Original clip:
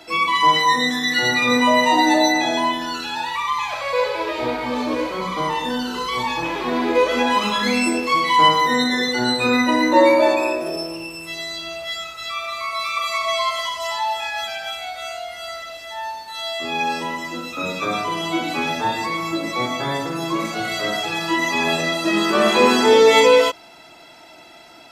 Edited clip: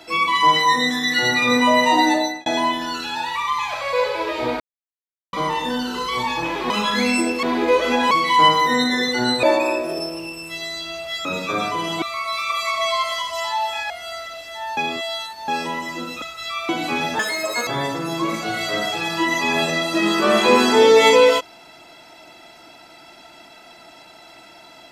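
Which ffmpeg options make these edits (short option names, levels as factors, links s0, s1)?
-filter_complex "[0:a]asplit=17[s0][s1][s2][s3][s4][s5][s6][s7][s8][s9][s10][s11][s12][s13][s14][s15][s16];[s0]atrim=end=2.46,asetpts=PTS-STARTPTS,afade=t=out:st=2.04:d=0.42[s17];[s1]atrim=start=2.46:end=4.6,asetpts=PTS-STARTPTS,afade=t=in:d=0.004:c=hsin,afade=t=out:st=2.136:d=0.004:c=hsin[s18];[s2]atrim=start=4.6:end=5.33,asetpts=PTS-STARTPTS,volume=0[s19];[s3]atrim=start=5.33:end=6.702,asetpts=PTS-STARTPTS,afade=t=in:d=0.004:c=hsin[s20];[s4]atrim=start=7.378:end=8.112[s21];[s5]atrim=start=6.698:end=7.382[s22];[s6]atrim=start=8.108:end=9.432[s23];[s7]atrim=start=10.198:end=12.022[s24];[s8]atrim=start=17.578:end=18.352[s25];[s9]atrim=start=12.488:end=14.372[s26];[s10]atrim=start=15.258:end=16.132[s27];[s11]atrim=start=16.128:end=16.842,asetpts=PTS-STARTPTS,areverse[s28];[s12]atrim=start=16.838:end=17.582[s29];[s13]atrim=start=12.018:end=12.492[s30];[s14]atrim=start=18.348:end=18.854[s31];[s15]atrim=start=18.85:end=19.78,asetpts=PTS-STARTPTS,asetrate=85113,aresample=44100,atrim=end_sample=21250,asetpts=PTS-STARTPTS[s32];[s16]atrim=start=19.776[s33];[s17][s18][s19][s20]concat=n=4:v=0:a=1[s34];[s34][s21]acrossfade=d=0.004:c1=hsin:c2=hsin[s35];[s35][s22]acrossfade=d=0.004:c1=hsin:c2=hsin[s36];[s36][s23]acrossfade=d=0.004:c1=hsin:c2=hsin[s37];[s37][s24]acrossfade=d=0.004:c1=hsin:c2=hsin[s38];[s38][s25]acrossfade=d=0.004:c1=hsin:c2=hsin[s39];[s39][s26]acrossfade=d=0.004:c1=hsin:c2=hsin[s40];[s40][s27]acrossfade=d=0.004:c1=hsin:c2=hsin[s41];[s41][s28]acrossfade=d=0.004:c1=hsin:c2=hsin[s42];[s42][s29]acrossfade=d=0.004:c1=hsin:c2=hsin[s43];[s43][s30]acrossfade=d=0.004:c1=hsin:c2=hsin[s44];[s44][s31]acrossfade=d=0.004:c1=hsin:c2=hsin[s45];[s45][s32]acrossfade=d=0.004:c1=hsin:c2=hsin[s46];[s46][s33]acrossfade=d=0.004:c1=hsin:c2=hsin"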